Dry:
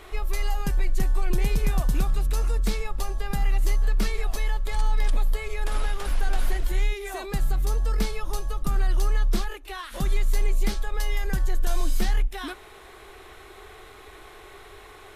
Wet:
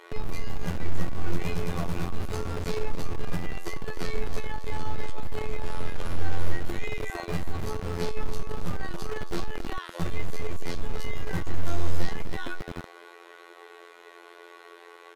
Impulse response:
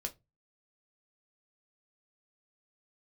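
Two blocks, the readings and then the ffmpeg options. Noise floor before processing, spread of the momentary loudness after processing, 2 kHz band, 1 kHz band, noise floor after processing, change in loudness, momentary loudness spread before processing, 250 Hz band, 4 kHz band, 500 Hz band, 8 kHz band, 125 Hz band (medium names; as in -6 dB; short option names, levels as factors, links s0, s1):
-47 dBFS, 16 LU, -2.5 dB, -2.5 dB, -50 dBFS, -6.5 dB, 20 LU, -0.5 dB, -4.5 dB, +0.5 dB, -8.0 dB, -3.5 dB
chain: -filter_complex "[0:a]aecho=1:1:271|542|813|1084:0.224|0.0985|0.0433|0.0191[s0];[1:a]atrim=start_sample=2205,atrim=end_sample=6174[s1];[s0][s1]afir=irnorm=-1:irlink=0,afftfilt=real='hypot(re,im)*cos(PI*b)':imag='0':win_size=2048:overlap=0.75,acrossover=split=310|2300[s2][s3][s4];[s2]acrusher=bits=3:dc=4:mix=0:aa=0.000001[s5];[s5][s3][s4]amix=inputs=3:normalize=0,highshelf=f=6300:g=-10,asplit=2[s6][s7];[s7]asoftclip=type=hard:threshold=0.0501,volume=0.447[s8];[s6][s8]amix=inputs=2:normalize=0"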